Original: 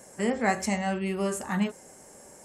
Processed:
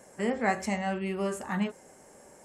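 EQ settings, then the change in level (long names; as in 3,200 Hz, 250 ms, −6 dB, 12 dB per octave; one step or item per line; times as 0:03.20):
bass and treble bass −2 dB, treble −6 dB
−1.5 dB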